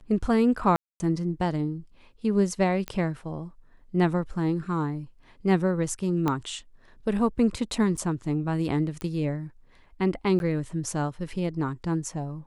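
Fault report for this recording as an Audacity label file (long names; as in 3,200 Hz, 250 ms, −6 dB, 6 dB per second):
0.760000	1.000000	drop-out 240 ms
2.880000	2.880000	click −17 dBFS
6.280000	6.280000	click −13 dBFS
7.970000	7.980000	drop-out 6.6 ms
9.010000	9.010000	click −20 dBFS
10.390000	10.400000	drop-out 11 ms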